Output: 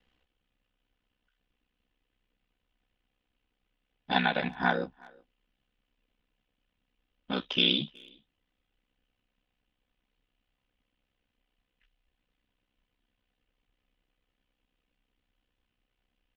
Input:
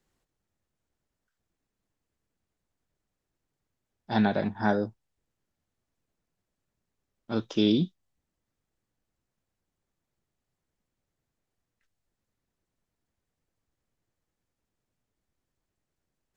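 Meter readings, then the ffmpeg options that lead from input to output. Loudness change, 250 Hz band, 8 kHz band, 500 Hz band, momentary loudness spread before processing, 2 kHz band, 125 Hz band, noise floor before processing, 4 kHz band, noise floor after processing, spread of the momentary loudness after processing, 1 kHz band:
−0.5 dB, −8.0 dB, can't be measured, −5.0 dB, 9 LU, +5.5 dB, −6.5 dB, −85 dBFS, +9.0 dB, −82 dBFS, 12 LU, +1.5 dB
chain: -filter_complex "[0:a]aecho=1:1:4:0.95,acrossover=split=680[link_01][link_02];[link_01]acompressor=threshold=-31dB:ratio=6[link_03];[link_03][link_02]amix=inputs=2:normalize=0,lowpass=frequency=3000:width_type=q:width=3.9,aeval=exprs='val(0)*sin(2*PI*32*n/s)':channel_layout=same,asplit=2[link_04][link_05];[link_05]adelay=370,highpass=300,lowpass=3400,asoftclip=type=hard:threshold=-20dB,volume=-25dB[link_06];[link_04][link_06]amix=inputs=2:normalize=0,volume=2dB"

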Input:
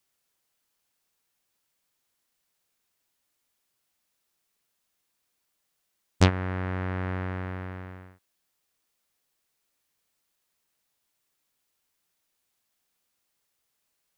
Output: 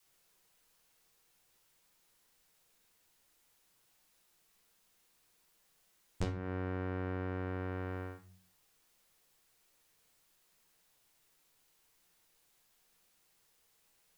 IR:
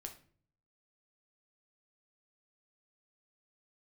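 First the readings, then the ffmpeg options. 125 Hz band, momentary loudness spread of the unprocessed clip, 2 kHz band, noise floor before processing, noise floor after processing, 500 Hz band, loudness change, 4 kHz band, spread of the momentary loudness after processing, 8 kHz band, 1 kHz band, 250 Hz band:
−10.5 dB, 18 LU, −11.0 dB, −78 dBFS, −73 dBFS, −6.0 dB, −10.5 dB, −17.5 dB, 6 LU, −14.0 dB, −10.0 dB, −8.5 dB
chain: -filter_complex "[0:a]adynamicequalizer=threshold=0.0178:dfrequency=220:dqfactor=0.7:tfrequency=220:tqfactor=0.7:attack=5:release=100:ratio=0.375:range=3:mode=boostabove:tftype=bell,acompressor=threshold=-41dB:ratio=8[link_01];[1:a]atrim=start_sample=2205,asetrate=52920,aresample=44100[link_02];[link_01][link_02]afir=irnorm=-1:irlink=0,volume=12dB"

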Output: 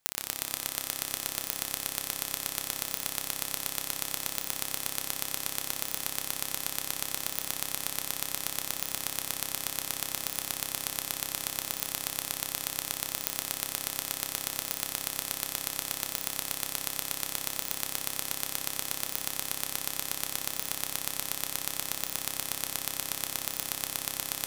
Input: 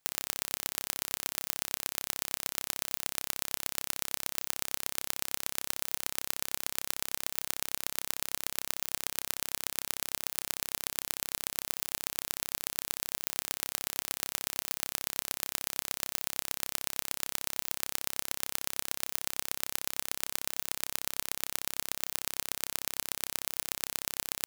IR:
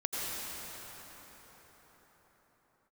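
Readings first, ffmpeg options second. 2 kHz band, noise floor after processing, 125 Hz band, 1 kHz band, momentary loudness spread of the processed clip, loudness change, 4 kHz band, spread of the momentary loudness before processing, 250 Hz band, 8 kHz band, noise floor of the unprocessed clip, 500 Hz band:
+2.0 dB, −41 dBFS, +4.5 dB, +3.0 dB, 1 LU, +2.0 dB, +2.5 dB, 1 LU, +4.5 dB, +2.5 dB, −76 dBFS, +2.5 dB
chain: -filter_complex "[0:a]asplit=2[link_01][link_02];[1:a]atrim=start_sample=2205,asetrate=30429,aresample=44100[link_03];[link_02][link_03]afir=irnorm=-1:irlink=0,volume=-8dB[link_04];[link_01][link_04]amix=inputs=2:normalize=0,volume=-2dB"

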